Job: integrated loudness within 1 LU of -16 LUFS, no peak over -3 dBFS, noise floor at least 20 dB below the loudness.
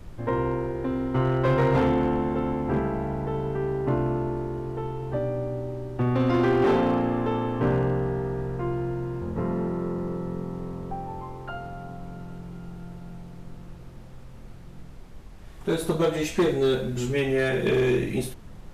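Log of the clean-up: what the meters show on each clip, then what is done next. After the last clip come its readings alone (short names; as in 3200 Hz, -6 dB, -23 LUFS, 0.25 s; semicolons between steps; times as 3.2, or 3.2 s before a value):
clipped 1.2%; flat tops at -16.5 dBFS; noise floor -43 dBFS; noise floor target -47 dBFS; loudness -26.5 LUFS; peak -16.5 dBFS; loudness target -16.0 LUFS
-> clip repair -16.5 dBFS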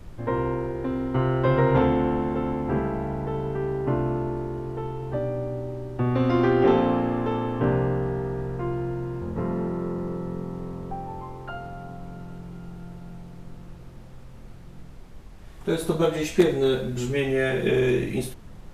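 clipped 0.0%; noise floor -43 dBFS; noise floor target -46 dBFS
-> noise print and reduce 6 dB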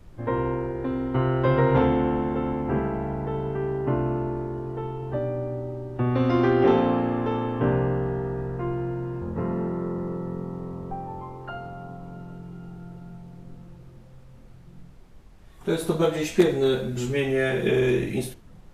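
noise floor -48 dBFS; loudness -25.5 LUFS; peak -7.5 dBFS; loudness target -16.0 LUFS
-> gain +9.5 dB; limiter -3 dBFS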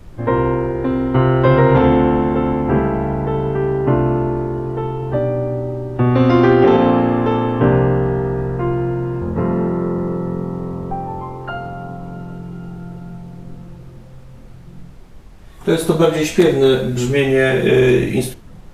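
loudness -16.5 LUFS; peak -3.0 dBFS; noise floor -39 dBFS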